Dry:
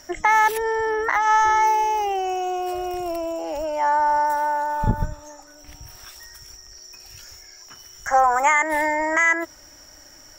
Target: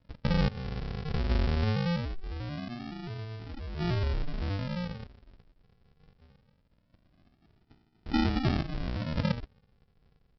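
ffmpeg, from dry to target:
ffmpeg -i in.wav -filter_complex "[0:a]acrossover=split=520 2500:gain=0.1 1 0.251[link_01][link_02][link_03];[link_01][link_02][link_03]amix=inputs=3:normalize=0,aresample=11025,acrusher=samples=28:mix=1:aa=0.000001:lfo=1:lforange=16.8:lforate=0.22,aresample=44100,equalizer=frequency=980:width=1.5:gain=-2.5,volume=-8dB" out.wav

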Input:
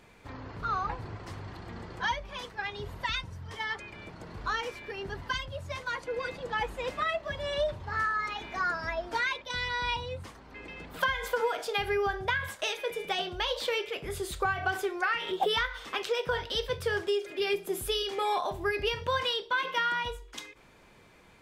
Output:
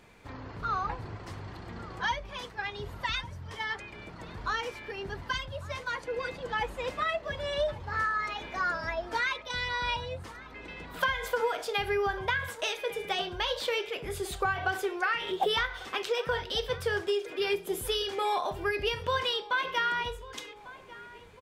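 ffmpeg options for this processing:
ffmpeg -i in.wav -filter_complex "[0:a]asplit=2[link_01][link_02];[link_02]adelay=1147,lowpass=frequency=2600:poles=1,volume=-18dB,asplit=2[link_03][link_04];[link_04]adelay=1147,lowpass=frequency=2600:poles=1,volume=0.52,asplit=2[link_05][link_06];[link_06]adelay=1147,lowpass=frequency=2600:poles=1,volume=0.52,asplit=2[link_07][link_08];[link_08]adelay=1147,lowpass=frequency=2600:poles=1,volume=0.52[link_09];[link_01][link_03][link_05][link_07][link_09]amix=inputs=5:normalize=0" out.wav

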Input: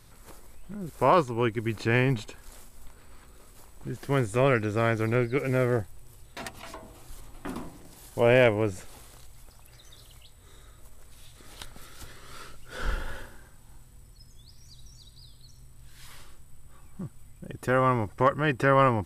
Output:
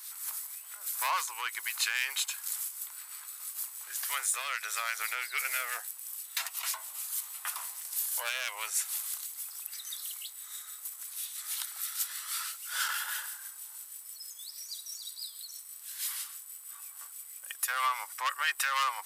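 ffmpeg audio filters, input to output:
ffmpeg -i in.wav -filter_complex "[0:a]asoftclip=type=tanh:threshold=-18dB,aemphasis=mode=production:type=riaa,asettb=1/sr,asplit=3[link_01][link_02][link_03];[link_01]atrim=end=4.194[link_04];[link_02]atrim=start=4.19:end=4.64,asetpts=PTS-STARTPTS,afade=type=in:duration=0.004:curve=qsin,afade=type=out:start_time=0.446:duration=0.004:curve=qsin,acompressor=threshold=-29dB:ratio=6[link_05];[link_03]atrim=start=4.636[link_06];[link_04][link_05]acrossfade=duration=0.004:curve1=hsin:curve2=qsin[link_07];[link_07][link_06]acrossfade=duration=0.004:curve1=qsin:curve2=hsin,acrossover=split=1400[link_08][link_09];[link_08]aeval=exprs='val(0)*(1-0.5/2+0.5/2*cos(2*PI*6.2*n/s))':channel_layout=same[link_10];[link_09]aeval=exprs='val(0)*(1-0.5/2-0.5/2*cos(2*PI*6.2*n/s))':channel_layout=same[link_11];[link_10][link_11]amix=inputs=2:normalize=0,alimiter=limit=-23.5dB:level=0:latency=1:release=112,highpass=frequency=1000:width=0.5412,highpass=frequency=1000:width=1.3066,volume=6dB" out.wav

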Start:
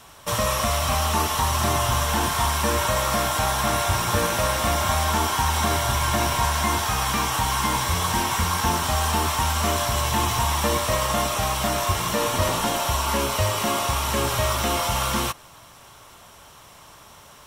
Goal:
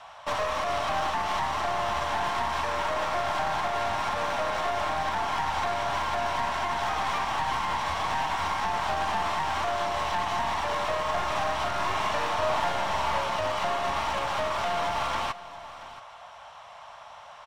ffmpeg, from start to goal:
ffmpeg -i in.wav -filter_complex "[0:a]lowpass=3500,lowshelf=frequency=490:width_type=q:width=3:gain=-12,alimiter=limit=-17.5dB:level=0:latency=1:release=147,aeval=exprs='clip(val(0),-1,0.0299)':channel_layout=same,asplit=3[link_01][link_02][link_03];[link_01]afade=type=out:start_time=11.05:duration=0.02[link_04];[link_02]asplit=2[link_05][link_06];[link_06]adelay=45,volume=-4dB[link_07];[link_05][link_07]amix=inputs=2:normalize=0,afade=type=in:start_time=11.05:duration=0.02,afade=type=out:start_time=13.19:duration=0.02[link_08];[link_03]afade=type=in:start_time=13.19:duration=0.02[link_09];[link_04][link_08][link_09]amix=inputs=3:normalize=0,aecho=1:1:679:0.15" out.wav

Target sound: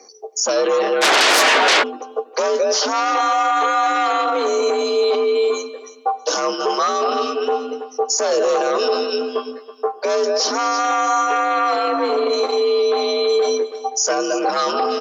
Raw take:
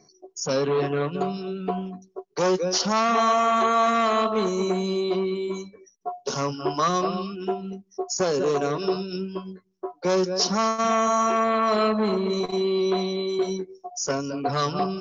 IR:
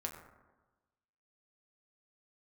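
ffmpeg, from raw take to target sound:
-filter_complex "[0:a]afreqshift=63,aecho=1:1:325|650:0.133|0.036,asplit=2[link_01][link_02];[1:a]atrim=start_sample=2205[link_03];[link_02][link_03]afir=irnorm=-1:irlink=0,volume=-11dB[link_04];[link_01][link_04]amix=inputs=2:normalize=0,alimiter=limit=-21dB:level=0:latency=1:release=18,asplit=3[link_05][link_06][link_07];[link_05]afade=type=out:start_time=1.01:duration=0.02[link_08];[link_06]aeval=exprs='0.0891*sin(PI/2*6.31*val(0)/0.0891)':channel_layout=same,afade=type=in:start_time=1.01:duration=0.02,afade=type=out:start_time=1.82:duration=0.02[link_09];[link_07]afade=type=in:start_time=1.82:duration=0.02[link_10];[link_08][link_09][link_10]amix=inputs=3:normalize=0,acontrast=86,highpass=frequency=350:width=0.5412,highpass=frequency=350:width=1.3066,volume=4dB"

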